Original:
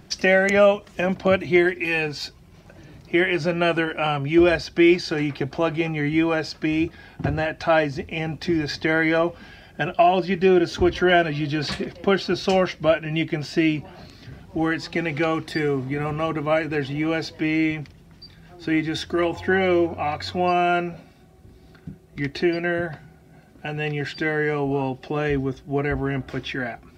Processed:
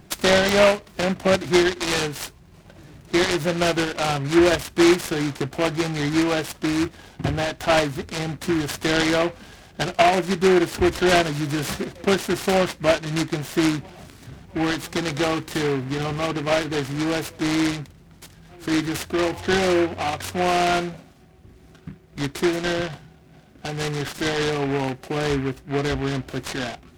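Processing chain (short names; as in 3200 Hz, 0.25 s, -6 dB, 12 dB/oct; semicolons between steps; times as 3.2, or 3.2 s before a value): noise-modulated delay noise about 1500 Hz, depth 0.096 ms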